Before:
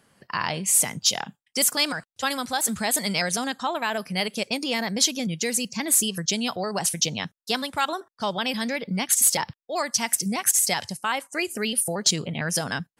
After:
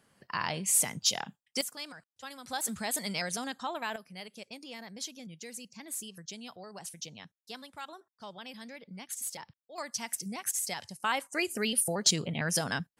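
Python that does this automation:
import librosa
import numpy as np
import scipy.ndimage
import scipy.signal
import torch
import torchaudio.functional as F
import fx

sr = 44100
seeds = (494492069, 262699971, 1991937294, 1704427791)

y = fx.gain(x, sr, db=fx.steps((0.0, -6.0), (1.61, -18.5), (2.46, -9.0), (3.96, -18.5), (9.78, -12.0), (11.0, -4.0)))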